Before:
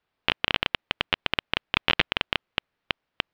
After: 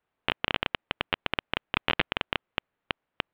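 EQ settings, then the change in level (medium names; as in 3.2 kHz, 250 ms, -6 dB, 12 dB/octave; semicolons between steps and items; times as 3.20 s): low-pass 4.1 kHz 24 dB/octave; bass shelf 160 Hz -3.5 dB; treble shelf 2.8 kHz -9.5 dB; 0.0 dB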